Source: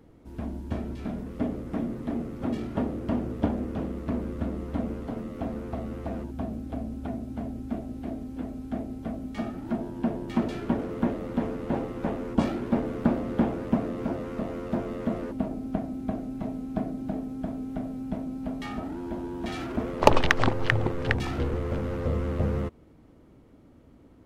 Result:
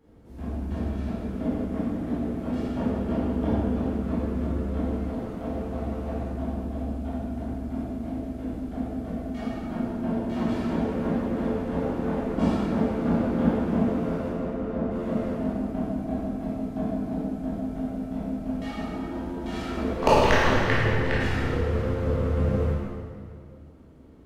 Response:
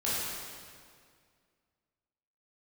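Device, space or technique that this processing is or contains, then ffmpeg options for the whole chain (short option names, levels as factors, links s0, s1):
stairwell: -filter_complex "[0:a]asettb=1/sr,asplit=3[s0][s1][s2];[s0]atrim=end=14.284[s3];[s1]atrim=start=14.28:end=14.91,asetpts=PTS-STARTPTS,afade=t=in:d=0.004:c=qsin,afade=t=out:st=0.626:d=0.004:c=qsin,lowpass=f=1500:p=1[s4];[s2]atrim=start=14.906[s5];[s3][s4]acrossfade=d=0.004:c1=hsin:c2=qsin[s6];[s6][s5]acrossfade=d=0.004:c1=qsin:c2=hsin[s7];[1:a]atrim=start_sample=2205[s8];[s7][s8]afir=irnorm=-1:irlink=0,volume=0.473"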